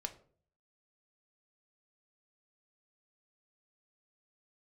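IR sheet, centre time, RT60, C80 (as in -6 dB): 7 ms, 0.50 s, 18.5 dB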